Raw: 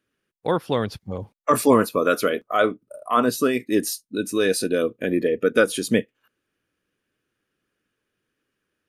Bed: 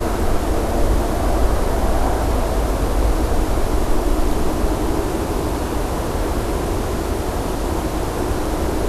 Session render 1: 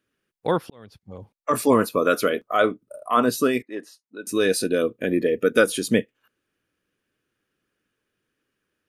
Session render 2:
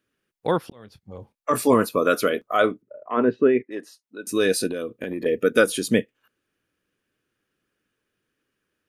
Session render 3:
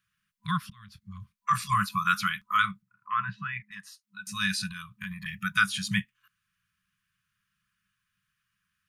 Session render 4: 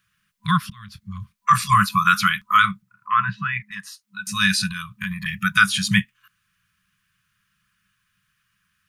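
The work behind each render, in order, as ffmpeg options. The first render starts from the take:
ffmpeg -i in.wav -filter_complex "[0:a]asettb=1/sr,asplit=3[link_01][link_02][link_03];[link_01]atrim=end=3.624[link_04];[link_02]atrim=start=3.62:end=4.27,asetpts=PTS-STARTPTS,afade=type=in:duration=0.004:curve=qsin,afade=type=out:start_time=0.646:duration=0.004:curve=qsin,bandpass=frequency=1000:width_type=q:width=1.6[link_05];[link_03]atrim=start=4.266[link_06];[link_04][link_05]acrossfade=duration=0.004:curve1=hsin:curve2=qsin[link_07];[link_07][link_06]acrossfade=duration=0.004:curve1=qsin:curve2=hsin,asettb=1/sr,asplit=3[link_08][link_09][link_10];[link_08]atrim=end=5.284[link_11];[link_09]atrim=start=5.28:end=5.7,asetpts=PTS-STARTPTS,afade=type=in:duration=0.004:curve=qsin,afade=type=out:start_time=0.416:duration=0.004:curve=qsin,highshelf=frequency=5800:gain=7[link_12];[link_10]atrim=start=5.696[link_13];[link_11][link_12]acrossfade=duration=0.004:curve1=hsin:curve2=qsin[link_14];[link_14][link_13]acrossfade=duration=0.004:curve1=qsin:curve2=hsin,asplit=2[link_15][link_16];[link_15]atrim=end=0.7,asetpts=PTS-STARTPTS,afade=type=out:start_time=0.696:duration=0.004:curve=hsin[link_17];[link_16]atrim=start=0.7,asetpts=PTS-STARTPTS,afade=type=in:duration=1.25[link_18];[link_17][link_18]concat=n=2:v=0:a=1" out.wav
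ffmpeg -i in.wav -filter_complex "[0:a]asettb=1/sr,asplit=3[link_01][link_02][link_03];[link_01]atrim=end=0.694[link_04];[link_02]atrim=start=0.69:end=1.74,asetpts=PTS-STARTPTS,afade=type=in:duration=0.004:curve=qsin,afade=type=out:start_time=1.046:duration=0.004:curve=qsin,asplit=2[link_05][link_06];[link_06]adelay=24,volume=-13dB[link_07];[link_05][link_07]amix=inputs=2:normalize=0,atrim=end_sample=46305[link_08];[link_03]atrim=start=1.736[link_09];[link_04][link_08]acrossfade=duration=0.004:curve1=hsin:curve2=qsin[link_10];[link_10][link_09]acrossfade=duration=0.004:curve1=qsin:curve2=hsin,asettb=1/sr,asplit=3[link_11][link_12][link_13];[link_11]atrim=end=2.824[link_14];[link_12]atrim=start=2.82:end=3.71,asetpts=PTS-STARTPTS,afade=type=in:duration=0.004:curve=qsin,afade=type=out:start_time=0.886:duration=0.004:curve=qsin,highpass=110,equalizer=frequency=390:width_type=q:width=4:gain=7,equalizer=frequency=710:width_type=q:width=4:gain=-6,equalizer=frequency=1200:width_type=q:width=4:gain=-10,lowpass=frequency=2200:width=0.5412,lowpass=frequency=2200:width=1.3066[link_15];[link_13]atrim=start=3.706[link_16];[link_14][link_15]acrossfade=duration=0.004:curve1=hsin:curve2=qsin[link_17];[link_17][link_16]acrossfade=duration=0.004:curve1=qsin:curve2=hsin,asettb=1/sr,asplit=3[link_18][link_19][link_20];[link_18]atrim=end=4.694[link_21];[link_19]atrim=start=4.69:end=5.26,asetpts=PTS-STARTPTS,afade=type=in:duration=0.004:curve=qsin,afade=type=out:start_time=0.566:duration=0.004:curve=qsin,acompressor=threshold=-25dB:ratio=6:attack=3.2:release=140:knee=1:detection=peak[link_22];[link_20]atrim=start=5.256[link_23];[link_21][link_22]acrossfade=duration=0.004:curve1=hsin:curve2=qsin[link_24];[link_24][link_23]acrossfade=duration=0.004:curve1=qsin:curve2=hsin" out.wav
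ffmpeg -i in.wav -filter_complex "[0:a]acrossover=split=6700[link_01][link_02];[link_02]acompressor=threshold=-45dB:ratio=4:attack=1:release=60[link_03];[link_01][link_03]amix=inputs=2:normalize=0,afftfilt=real='re*(1-between(b*sr/4096,210,1000))':imag='im*(1-between(b*sr/4096,210,1000))':win_size=4096:overlap=0.75" out.wav
ffmpeg -i in.wav -af "volume=9.5dB,alimiter=limit=-3dB:level=0:latency=1" out.wav

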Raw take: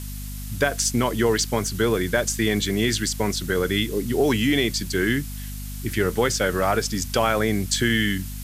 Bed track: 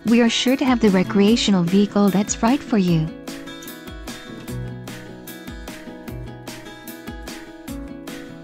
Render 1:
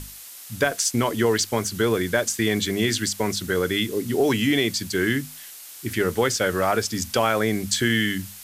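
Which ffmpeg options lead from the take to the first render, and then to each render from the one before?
ffmpeg -i in.wav -af "bandreject=frequency=50:width_type=h:width=6,bandreject=frequency=100:width_type=h:width=6,bandreject=frequency=150:width_type=h:width=6,bandreject=frequency=200:width_type=h:width=6,bandreject=frequency=250:width_type=h:width=6" out.wav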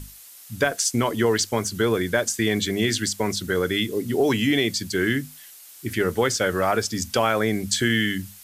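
ffmpeg -i in.wav -af "afftdn=noise_reduction=6:noise_floor=-42" out.wav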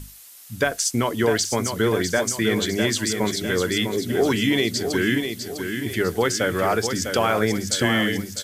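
ffmpeg -i in.wav -af "aecho=1:1:652|1304|1956|2608|3260:0.447|0.201|0.0905|0.0407|0.0183" out.wav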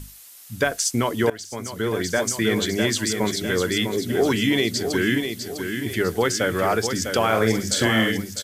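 ffmpeg -i in.wav -filter_complex "[0:a]asplit=3[link_01][link_02][link_03];[link_01]afade=type=out:start_time=7.31:duration=0.02[link_04];[link_02]asplit=2[link_05][link_06];[link_06]adelay=45,volume=-6dB[link_07];[link_05][link_07]amix=inputs=2:normalize=0,afade=type=in:start_time=7.31:duration=0.02,afade=type=out:start_time=8.11:duration=0.02[link_08];[link_03]afade=type=in:start_time=8.11:duration=0.02[link_09];[link_04][link_08][link_09]amix=inputs=3:normalize=0,asplit=2[link_10][link_11];[link_10]atrim=end=1.3,asetpts=PTS-STARTPTS,afade=type=out:start_time=1.296:duration=0.004:curve=hsin:silence=0.112202[link_12];[link_11]atrim=start=1.3,asetpts=PTS-STARTPTS,afade=type=in:duration=0.97:silence=0.112202[link_13];[link_12][link_13]concat=n=2:v=0:a=1" out.wav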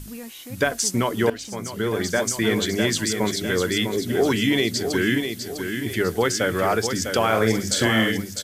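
ffmpeg -i in.wav -i bed.wav -filter_complex "[1:a]volume=-22.5dB[link_01];[0:a][link_01]amix=inputs=2:normalize=0" out.wav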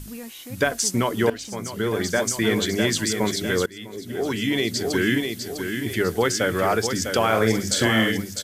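ffmpeg -i in.wav -filter_complex "[0:a]asplit=2[link_01][link_02];[link_01]atrim=end=3.66,asetpts=PTS-STARTPTS,afade=type=out:start_time=3.656:duration=0.004:curve=hsin:silence=0.0707946[link_03];[link_02]atrim=start=3.66,asetpts=PTS-STARTPTS,afade=type=in:duration=1.23:silence=0.0707946[link_04];[link_03][link_04]concat=n=2:v=0:a=1" out.wav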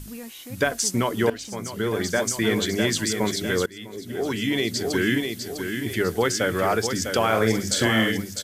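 ffmpeg -i in.wav -af "volume=-1dB" out.wav

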